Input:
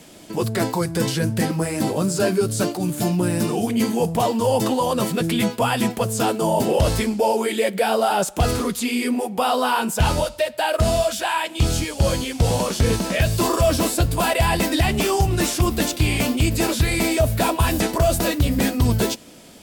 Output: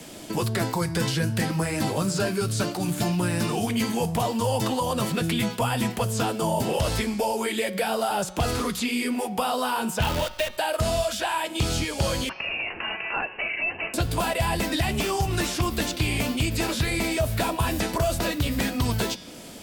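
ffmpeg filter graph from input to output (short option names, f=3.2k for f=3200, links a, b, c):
-filter_complex "[0:a]asettb=1/sr,asplit=3[a][b][c];[a]atrim=end=10.024[d];[b]atrim=start=10.02:end=10.57,asetpts=PTS-STARTPTS,afade=t=in:d=0.004:c=qsin,afade=t=out:st=0.546:d=0.004:c=qsin,lowpass=f=3.3k:t=q:w=1.8,acrusher=bits=5:dc=4:mix=0:aa=0.000001[e];[c]atrim=start=10.566[f];[d][e]acrossfade=d=0.004:c1=hsin:c2=qsin[g];[g][f]acrossfade=d=0.004:c1=qsin:c2=hsin,asettb=1/sr,asplit=3[h][i][j];[h]atrim=end=12.294[k];[i]atrim=start=12.29:end=13.94,asetpts=PTS-STARTPTS,afade=t=in:d=0.004:c=qsin,afade=t=out:st=1.646:d=0.004:c=qsin,highpass=f=600:w=0.5412,highpass=f=600:w=1.3066,lowpass=f=2.8k:t=q:w=0.5098,lowpass=f=2.8k:t=q:w=0.6013,lowpass=f=2.8k:t=q:w=0.9,lowpass=f=2.8k:t=q:w=2.563,afreqshift=-3300[l];[j]atrim=start=13.936[m];[k][l]acrossfade=d=0.004:c1=hsin:c2=qsin[n];[n][m]acrossfade=d=0.004:c1=qsin:c2=hsin,bandreject=f=183.6:t=h:w=4,bandreject=f=367.2:t=h:w=4,bandreject=f=550.8:t=h:w=4,bandreject=f=734.4:t=h:w=4,bandreject=f=918:t=h:w=4,bandreject=f=1.1016k:t=h:w=4,bandreject=f=1.2852k:t=h:w=4,bandreject=f=1.4688k:t=h:w=4,bandreject=f=1.6524k:t=h:w=4,bandreject=f=1.836k:t=h:w=4,bandreject=f=2.0196k:t=h:w=4,bandreject=f=2.2032k:t=h:w=4,bandreject=f=2.3868k:t=h:w=4,bandreject=f=2.5704k:t=h:w=4,bandreject=f=2.754k:t=h:w=4,bandreject=f=2.9376k:t=h:w=4,bandreject=f=3.1212k:t=h:w=4,bandreject=f=3.3048k:t=h:w=4,bandreject=f=3.4884k:t=h:w=4,bandreject=f=3.672k:t=h:w=4,bandreject=f=3.8556k:t=h:w=4,bandreject=f=4.0392k:t=h:w=4,bandreject=f=4.2228k:t=h:w=4,bandreject=f=4.4064k:t=h:w=4,bandreject=f=4.59k:t=h:w=4,bandreject=f=4.7736k:t=h:w=4,bandreject=f=4.9572k:t=h:w=4,bandreject=f=5.1408k:t=h:w=4,bandreject=f=5.3244k:t=h:w=4,bandreject=f=5.508k:t=h:w=4,bandreject=f=5.6916k:t=h:w=4,bandreject=f=5.8752k:t=h:w=4,bandreject=f=6.0588k:t=h:w=4,bandreject=f=6.2424k:t=h:w=4,acrossover=split=140|830|5400[o][p][q][r];[o]acompressor=threshold=-31dB:ratio=4[s];[p]acompressor=threshold=-33dB:ratio=4[t];[q]acompressor=threshold=-33dB:ratio=4[u];[r]acompressor=threshold=-42dB:ratio=4[v];[s][t][u][v]amix=inputs=4:normalize=0,volume=3.5dB"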